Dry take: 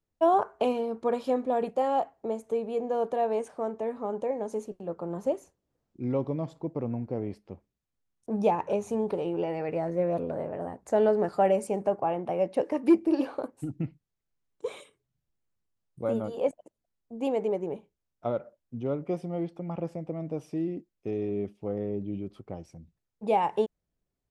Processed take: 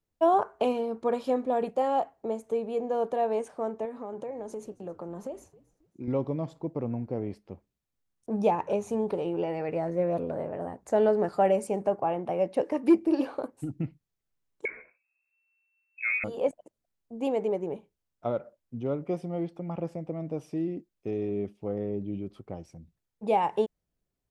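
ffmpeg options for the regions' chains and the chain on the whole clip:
-filter_complex "[0:a]asettb=1/sr,asplit=3[s0][s1][s2];[s0]atrim=end=3.854[s3];[s1]atrim=start=3.85:end=6.08,asetpts=PTS-STARTPTS,afade=t=in:d=0.004:c=qsin,afade=t=out:st=2.226:d=0.004:c=qsin,highpass=120,acompressor=threshold=0.0224:ratio=5:attack=3.2:release=140:knee=1:detection=peak,asplit=3[s4][s5][s6];[s5]adelay=269,afreqshift=-110,volume=0.0841[s7];[s6]adelay=538,afreqshift=-220,volume=0.0279[s8];[s4][s7][s8]amix=inputs=3:normalize=0,atrim=end_sample=98343[s9];[s2]atrim=start=6.076[s10];[s3][s9]acrossfade=d=0.004:c1=hsin:c2=qsin[s11];[s11][s10]acrossfade=d=0.004:c1=qsin:c2=hsin,asettb=1/sr,asplit=3[s12][s13][s14];[s12]atrim=end=14.654[s15];[s13]atrim=start=14.65:end=16.24,asetpts=PTS-STARTPTS,afade=t=in:d=0.004:c=qsin,afade=t=out:st=1.586:d=0.004:c=qsin,asplit=2[s16][s17];[s17]adelay=15,volume=0.473[s18];[s16][s18]amix=inputs=2:normalize=0,atrim=end_sample=70119,lowpass=f=2300:t=q:w=0.5098,lowpass=f=2300:t=q:w=0.6013,lowpass=f=2300:t=q:w=0.9,lowpass=f=2300:t=q:w=2.563,afreqshift=-2700[s19];[s14]atrim=start=16.236[s20];[s15][s19]acrossfade=d=0.004:c1=hsin:c2=qsin[s21];[s21][s20]acrossfade=d=0.004:c1=qsin:c2=hsin"

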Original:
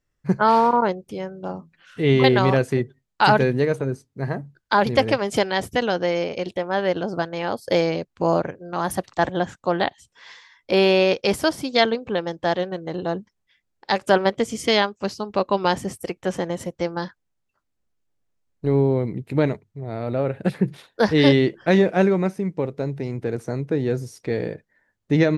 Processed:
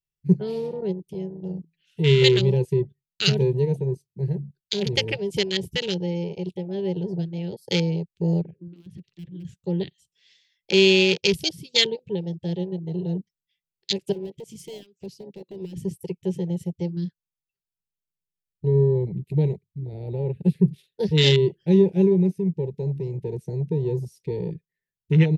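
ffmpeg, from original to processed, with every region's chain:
-filter_complex "[0:a]asettb=1/sr,asplit=3[s0][s1][s2];[s0]atrim=end=8.414[s3];[s1]atrim=start=8.41:end=9.45,asetpts=PTS-STARTPTS,afade=t=in:d=0.004:c=qsin,afade=t=out:st=1.036:d=0.004:c=qsin,lowpass=3200,aeval=exprs='0.211*(abs(mod(val(0)/0.211+3,4)-2)-1)':c=same,acompressor=threshold=0.0178:ratio=4:attack=3.2:release=140:knee=1:detection=peak[s4];[s2]atrim=start=9.446[s5];[s3][s4]acrossfade=d=0.004:c1=hsin:c2=qsin[s6];[s6][s5]acrossfade=d=0.004:c1=qsin:c2=hsin,asettb=1/sr,asplit=3[s7][s8][s9];[s7]atrim=end=14.124[s10];[s8]atrim=start=14.12:end=15.76,asetpts=PTS-STARTPTS,afade=t=in:d=0.004:c=qsin,afade=t=out:st=1.636:d=0.004:c=qsin,highpass=96,acompressor=threshold=0.0447:ratio=3:attack=3.2:release=140:knee=1:detection=peak,asoftclip=type=hard:threshold=0.0501[s11];[s9]atrim=start=15.756[s12];[s10][s11]acrossfade=d=0.004:c1=hsin:c2=qsin[s13];[s13][s12]acrossfade=d=0.004:c1=qsin:c2=hsin,firequalizer=gain_entry='entry(110,0);entry(170,10);entry(260,-20);entry(380,4);entry(700,-23);entry(1200,-20);entry(1900,-3);entry(2700,8);entry(6700,6);entry(14000,15)':delay=0.05:min_phase=1,afwtdn=0.0501,volume=0.794"

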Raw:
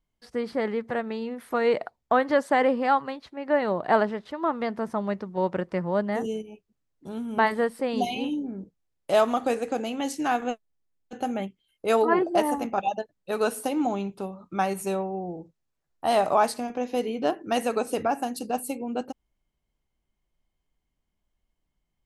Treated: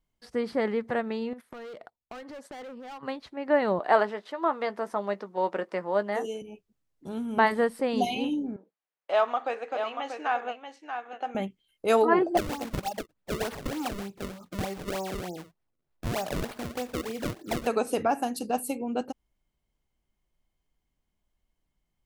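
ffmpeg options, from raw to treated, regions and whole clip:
-filter_complex "[0:a]asettb=1/sr,asplit=3[s0][s1][s2];[s0]atrim=end=1.334[s3];[s1]atrim=start=1.33:end=3.03,asetpts=PTS-STARTPTS,afade=t=in:d=0.004:c=qsin,afade=t=out:st=1.696:d=0.004:c=qsin,asoftclip=type=hard:threshold=0.0668,agate=range=0.141:threshold=0.00708:ratio=16:release=100:detection=peak,acompressor=threshold=0.01:ratio=20:attack=3.2:release=140:knee=1:detection=peak[s4];[s2]atrim=start=3.026[s5];[s3][s4]acrossfade=d=0.004:c1=hsin:c2=qsin[s6];[s6][s5]acrossfade=d=0.004:c1=qsin:c2=hsin,asettb=1/sr,asplit=3[s7][s8][s9];[s7]atrim=end=3.794[s10];[s8]atrim=start=3.79:end=6.42,asetpts=PTS-STARTPTS,afade=t=in:d=0.004:c=qsin,afade=t=out:st=2.626:d=0.004:c=qsin,highpass=370,asplit=2[s11][s12];[s12]adelay=15,volume=0.251[s13];[s11][s13]amix=inputs=2:normalize=0,atrim=end_sample=115983[s14];[s9]atrim=start=6.416[s15];[s10][s14]acrossfade=d=0.004:c1=hsin:c2=qsin[s16];[s16][s15]acrossfade=d=0.004:c1=qsin:c2=hsin,asettb=1/sr,asplit=3[s17][s18][s19];[s17]atrim=end=8.564[s20];[s18]atrim=start=8.56:end=11.35,asetpts=PTS-STARTPTS,afade=t=in:d=0.004:c=qsin,afade=t=out:st=2.786:d=0.004:c=qsin,highpass=680,lowpass=2700,aecho=1:1:635:0.422,atrim=end_sample=123039[s21];[s19]atrim=start=11.346[s22];[s20][s21]acrossfade=d=0.004:c1=hsin:c2=qsin[s23];[s23][s22]acrossfade=d=0.004:c1=qsin:c2=hsin,asettb=1/sr,asplit=3[s24][s25][s26];[s24]atrim=end=12.374[s27];[s25]atrim=start=12.37:end=17.67,asetpts=PTS-STARTPTS,afade=t=in:d=0.004:c=qsin,afade=t=out:st=5.296:d=0.004:c=qsin,acrossover=split=210|460[s28][s29][s30];[s28]acompressor=threshold=0.00708:ratio=4[s31];[s29]acompressor=threshold=0.00794:ratio=4[s32];[s30]acompressor=threshold=0.0282:ratio=4[s33];[s31][s32][s33]amix=inputs=3:normalize=0,acrusher=samples=31:mix=1:aa=0.000001:lfo=1:lforange=49.6:lforate=3.3[s34];[s26]atrim=start=17.666[s35];[s27][s34]acrossfade=d=0.004:c1=hsin:c2=qsin[s36];[s36][s35]acrossfade=d=0.004:c1=qsin:c2=hsin"

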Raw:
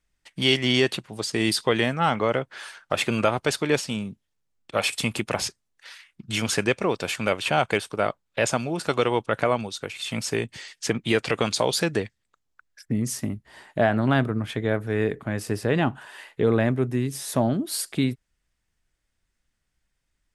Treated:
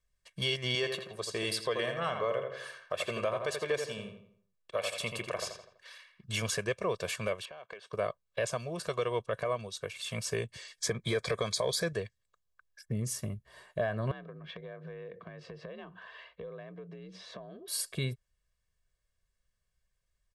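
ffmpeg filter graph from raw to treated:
-filter_complex "[0:a]asettb=1/sr,asplit=3[s0][s1][s2];[s0]atrim=end=0.754[s3];[s1]atrim=start=0.75:end=6.24,asetpts=PTS-STARTPTS,afade=t=in:d=0.004:c=qsin,afade=t=out:st=5.486:d=0.004:c=qsin,bass=f=250:g=-8,treble=f=4000:g=-3,asplit=2[s4][s5];[s5]adelay=83,lowpass=f=3200:p=1,volume=0.501,asplit=2[s6][s7];[s7]adelay=83,lowpass=f=3200:p=1,volume=0.43,asplit=2[s8][s9];[s9]adelay=83,lowpass=f=3200:p=1,volume=0.43,asplit=2[s10][s11];[s11]adelay=83,lowpass=f=3200:p=1,volume=0.43,asplit=2[s12][s13];[s13]adelay=83,lowpass=f=3200:p=1,volume=0.43[s14];[s4][s6][s8][s10][s12][s14]amix=inputs=6:normalize=0,atrim=end_sample=242109[s15];[s2]atrim=start=6.236[s16];[s3][s15]acrossfade=d=0.004:c1=hsin:c2=qsin[s17];[s17][s16]acrossfade=d=0.004:c1=qsin:c2=hsin,asettb=1/sr,asplit=3[s18][s19][s20];[s18]atrim=end=7.454[s21];[s19]atrim=start=7.45:end=7.93,asetpts=PTS-STARTPTS,afade=t=in:d=0.004:c=qsin,afade=t=out:st=0.476:d=0.004:c=qsin,highpass=270,lowpass=4200,acompressor=threshold=0.0178:ratio=20:attack=3.2:release=140:knee=1:detection=peak[s22];[s20]atrim=start=7.926[s23];[s21][s22]acrossfade=d=0.004:c1=hsin:c2=qsin[s24];[s24][s23]acrossfade=d=0.004:c1=qsin:c2=hsin,asettb=1/sr,asplit=3[s25][s26][s27];[s25]atrim=end=10.784[s28];[s26]atrim=start=10.78:end=11.93,asetpts=PTS-STARTPTS,afade=t=in:d=0.004:c=qsin,afade=t=out:st=1.146:d=0.004:c=qsin,acontrast=56,asuperstop=centerf=2800:order=8:qfactor=7.2[s29];[s27]atrim=start=11.926[s30];[s28][s29]acrossfade=d=0.004:c1=hsin:c2=qsin[s31];[s31][s30]acrossfade=d=0.004:c1=qsin:c2=hsin,asettb=1/sr,asplit=3[s32][s33][s34];[s32]atrim=end=14.114[s35];[s33]atrim=start=14.11:end=17.68,asetpts=PTS-STARTPTS,afade=t=in:d=0.004:c=qsin,afade=t=out:st=3.566:d=0.004:c=qsin,lowpass=f=4100:w=0.5412,lowpass=f=4100:w=1.3066,acompressor=threshold=0.0224:ratio=16:attack=3.2:release=140:knee=1:detection=peak,afreqshift=49[s36];[s34]atrim=start=17.676[s37];[s35][s36]acrossfade=d=0.004:c1=hsin:c2=qsin[s38];[s38][s37]acrossfade=d=0.004:c1=qsin:c2=hsin,equalizer=f=2300:t=o:w=0.77:g=-2,aecho=1:1:1.8:0.84,alimiter=limit=0.237:level=0:latency=1:release=296,volume=0.398"

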